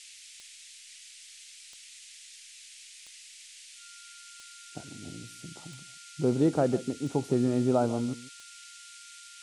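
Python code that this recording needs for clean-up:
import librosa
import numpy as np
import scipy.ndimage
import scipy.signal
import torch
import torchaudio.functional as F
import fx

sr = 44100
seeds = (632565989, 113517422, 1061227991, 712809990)

y = fx.fix_declick_ar(x, sr, threshold=10.0)
y = fx.notch(y, sr, hz=1400.0, q=30.0)
y = fx.noise_reduce(y, sr, print_start_s=0.78, print_end_s=1.28, reduce_db=24.0)
y = fx.fix_echo_inverse(y, sr, delay_ms=148, level_db=-17.0)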